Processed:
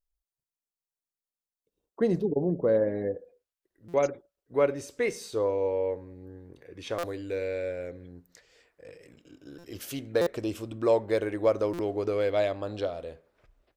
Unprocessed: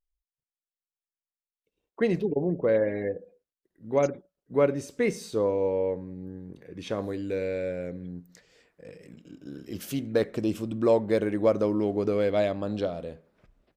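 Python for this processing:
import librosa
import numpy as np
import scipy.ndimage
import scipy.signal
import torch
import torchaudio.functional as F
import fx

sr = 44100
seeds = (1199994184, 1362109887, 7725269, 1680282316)

y = fx.peak_eq(x, sr, hz=fx.steps((0.0, 2400.0), (3.15, 190.0)), db=-13.5, octaves=0.92)
y = fx.buffer_glitch(y, sr, at_s=(3.88, 6.98, 9.58, 10.21, 11.73), block=256, repeats=9)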